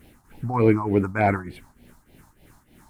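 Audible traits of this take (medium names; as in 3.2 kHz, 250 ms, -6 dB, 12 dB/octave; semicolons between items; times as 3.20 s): phasing stages 4, 3.4 Hz, lowest notch 440–1200 Hz; a quantiser's noise floor 12-bit, dither triangular; tremolo triangle 3.3 Hz, depth 80%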